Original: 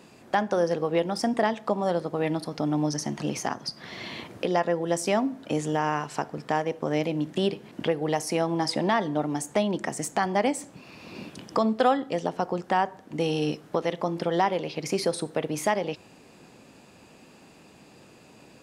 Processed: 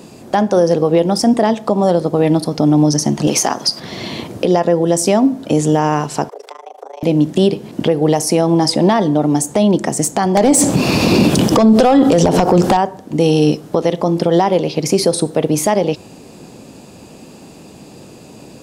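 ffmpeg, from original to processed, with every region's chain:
-filter_complex "[0:a]asettb=1/sr,asplit=3[a][b][c];[a]atrim=end=3.274[d];[b]atrim=start=3.27:end=3.8,asetpts=PTS-STARTPTS,afade=t=in:d=0.004:c=qsin,afade=t=out:st=0.526:d=0.004:c=qsin,highpass=f=610:p=1,acontrast=84[e];[c]atrim=start=3.796[f];[d][e]acrossfade=d=0.004:c1=hsin:c2=qsin[g];[g][f]acrossfade=d=0.004:c1=qsin:c2=hsin,asettb=1/sr,asplit=3[h][i][j];[h]atrim=end=6.294[k];[i]atrim=start=6.29:end=7.03,asetpts=PTS-STARTPTS,afade=t=in:d=0.004:c=qsin,afade=t=out:st=0.736:d=0.004:c=qsin,tremolo=f=26:d=0.974,acompressor=threshold=-40dB:ratio=12:attack=3.2:release=140:knee=1:detection=peak,afreqshift=270[l];[j]atrim=start=7.026[m];[k][l]acrossfade=d=0.004:c1=hsin:c2=qsin[n];[n][m]acrossfade=d=0.004:c1=qsin:c2=hsin,asettb=1/sr,asplit=3[o][p][q];[o]atrim=end=10.374[r];[p]atrim=start=10.37:end=12.77,asetpts=PTS-STARTPTS,afade=t=in:d=0.004:c=qsin,afade=t=out:st=2.396:d=0.004:c=qsin,acompressor=threshold=-32dB:ratio=4:attack=3.2:release=140:knee=1:detection=peak,aeval=exprs='0.282*sin(PI/2*6.31*val(0)/0.282)':c=same[s];[q]atrim=start=12.766[t];[r][s]acrossfade=d=0.004:c1=hsin:c2=qsin[u];[u][t]acrossfade=d=0.004:c1=qsin:c2=hsin,equalizer=f=1.8k:t=o:w=2:g=-10,alimiter=level_in=18.5dB:limit=-1dB:release=50:level=0:latency=1,volume=-2.5dB"

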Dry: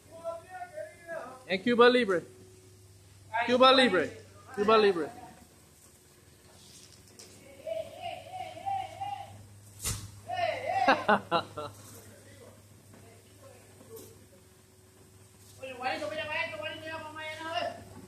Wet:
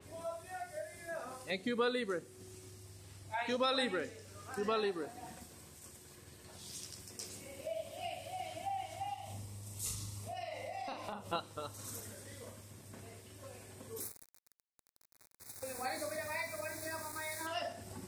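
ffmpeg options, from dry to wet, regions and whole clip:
-filter_complex "[0:a]asettb=1/sr,asplit=3[a][b][c];[a]atrim=end=9.144[d];[b]atrim=start=9.14:end=11.33,asetpts=PTS-STARTPTS,afade=t=in:d=0.004:c=qsin,afade=t=out:st=2.186:d=0.004:c=qsin,equalizer=f=1.6k:t=o:w=0.28:g=-12.5,acompressor=threshold=-43dB:ratio=3:attack=3.2:release=140:knee=1:detection=peak,asplit=2[e][f];[f]adelay=39,volume=-4dB[g];[e][g]amix=inputs=2:normalize=0,atrim=end_sample=96579[h];[c]atrim=start=11.326[i];[d][h]acrossfade=d=0.004:c1=hsin:c2=qsin[j];[j][i]acrossfade=d=0.004:c1=qsin:c2=hsin,asettb=1/sr,asplit=3[k][l][m];[k]atrim=end=14.004[n];[l]atrim=start=14:end=17.47,asetpts=PTS-STARTPTS,afade=t=in:d=0.004:c=qsin,afade=t=out:st=3.466:d=0.004:c=qsin,equalizer=f=11k:t=o:w=0.55:g=15,aeval=exprs='val(0)*gte(abs(val(0)),0.00631)':c=same,asuperstop=centerf=3000:order=8:qfactor=2.5[o];[m]atrim=start=17.466[p];[n][o]acrossfade=d=0.004:c1=hsin:c2=qsin[q];[q][p]acrossfade=d=0.004:c1=qsin:c2=hsin,acompressor=threshold=-44dB:ratio=2,adynamicequalizer=threshold=0.001:dfrequency=4300:dqfactor=0.7:tfrequency=4300:tqfactor=0.7:attack=5:release=100:ratio=0.375:range=3:mode=boostabove:tftype=highshelf,volume=1.5dB"

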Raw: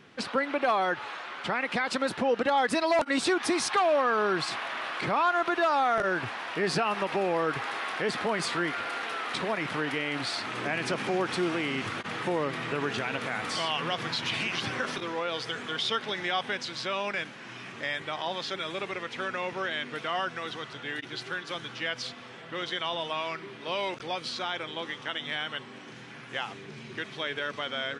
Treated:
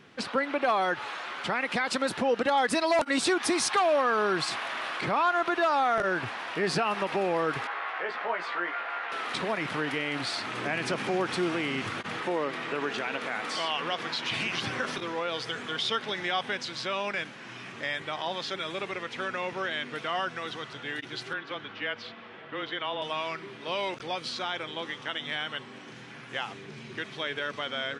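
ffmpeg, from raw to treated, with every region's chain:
-filter_complex "[0:a]asettb=1/sr,asplit=3[a][b][c];[a]atrim=end=0.764[d];[b]atrim=start=0.76:end=4.97,asetpts=PTS-STARTPTS,afade=t=in:d=0.004:c=qsin,afade=t=out:st=4.206:d=0.004:c=qsin,highshelf=f=6.1k:g=5.5,acompressor=mode=upward:threshold=-31dB:ratio=2.5:attack=3.2:release=140:knee=2.83:detection=peak[e];[c]atrim=start=4.966[f];[d][e]acrossfade=d=0.004:c1=hsin:c2=qsin[g];[g][f]acrossfade=d=0.004:c1=qsin:c2=hsin,asettb=1/sr,asplit=3[h][i][j];[h]atrim=end=7.674[k];[i]atrim=start=7.67:end=9.12,asetpts=PTS-STARTPTS,afade=t=in:d=0.004:c=qsin,afade=t=out:st=1.446:d=0.004:c=qsin,highpass=620,lowpass=2.1k,asplit=2[l][m];[m]adelay=17,volume=-4dB[n];[l][n]amix=inputs=2:normalize=0,atrim=end_sample=63945[o];[j]atrim=start=9.116[p];[k][o]acrossfade=d=0.004:c1=hsin:c2=qsin[q];[q][p]acrossfade=d=0.004:c1=qsin:c2=hsin,asettb=1/sr,asplit=3[r][s][t];[r]atrim=end=12.204[u];[s]atrim=start=12.2:end=14.31,asetpts=PTS-STARTPTS,afade=t=in:d=0.004:c=qsin,afade=t=out:st=2.106:d=0.004:c=qsin,highpass=240,highshelf=f=8.7k:g=-7[v];[t]atrim=start=14.306[w];[u][v]acrossfade=d=0.004:c1=hsin:c2=qsin[x];[x][w]acrossfade=d=0.004:c1=qsin:c2=hsin,asettb=1/sr,asplit=3[y][z][aa];[y]atrim=end=21.334[ab];[z]atrim=start=21.33:end=23.02,asetpts=PTS-STARTPTS,afade=t=in:d=0.004:c=qsin,afade=t=out:st=1.686:d=0.004:c=qsin,acrossover=split=170 3800:gain=0.224 1 0.0631[ac][ad][ae];[ac][ad][ae]amix=inputs=3:normalize=0,afreqshift=-17[af];[aa]atrim=start=23.016[ag];[ab][af]acrossfade=d=0.004:c1=hsin:c2=qsin[ah];[ah][ag]acrossfade=d=0.004:c1=qsin:c2=hsin"

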